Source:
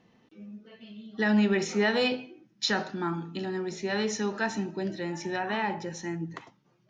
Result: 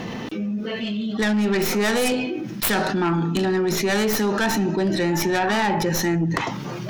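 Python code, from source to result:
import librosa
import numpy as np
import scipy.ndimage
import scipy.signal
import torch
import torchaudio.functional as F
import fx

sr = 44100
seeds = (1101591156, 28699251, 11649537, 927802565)

p1 = fx.tracing_dist(x, sr, depth_ms=0.39)
p2 = fx.rider(p1, sr, range_db=10, speed_s=0.5)
p3 = p1 + (p2 * 10.0 ** (2.0 / 20.0))
p4 = 10.0 ** (-16.0 / 20.0) * np.tanh(p3 / 10.0 ** (-16.0 / 20.0))
y = fx.env_flatten(p4, sr, amount_pct=70)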